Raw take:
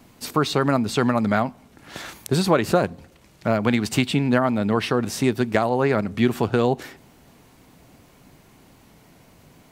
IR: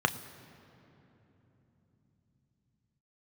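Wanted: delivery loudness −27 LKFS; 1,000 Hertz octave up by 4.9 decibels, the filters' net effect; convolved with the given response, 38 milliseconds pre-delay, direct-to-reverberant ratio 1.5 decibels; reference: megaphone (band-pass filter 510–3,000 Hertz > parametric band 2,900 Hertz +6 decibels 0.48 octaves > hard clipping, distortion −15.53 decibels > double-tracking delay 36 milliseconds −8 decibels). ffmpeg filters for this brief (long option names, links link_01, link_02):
-filter_complex "[0:a]equalizer=frequency=1000:width_type=o:gain=7,asplit=2[link_01][link_02];[1:a]atrim=start_sample=2205,adelay=38[link_03];[link_02][link_03]afir=irnorm=-1:irlink=0,volume=-12.5dB[link_04];[link_01][link_04]amix=inputs=2:normalize=0,highpass=510,lowpass=3000,equalizer=frequency=2900:width_type=o:width=0.48:gain=6,asoftclip=type=hard:threshold=-11dB,asplit=2[link_05][link_06];[link_06]adelay=36,volume=-8dB[link_07];[link_05][link_07]amix=inputs=2:normalize=0,volume=-6dB"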